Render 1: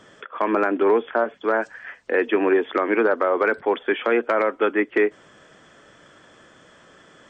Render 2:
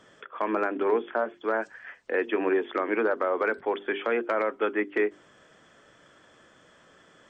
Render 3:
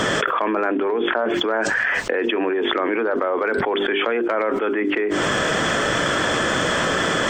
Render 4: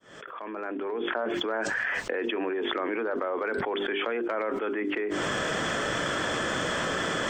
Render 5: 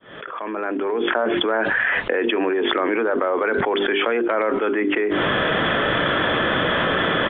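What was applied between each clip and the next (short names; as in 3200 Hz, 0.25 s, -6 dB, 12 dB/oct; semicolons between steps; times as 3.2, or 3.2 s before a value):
notches 50/100/150/200/250/300/350/400 Hz; gain -6 dB
fast leveller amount 100%
opening faded in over 1.16 s; gain -8.5 dB
downsampling 8000 Hz; gain +9 dB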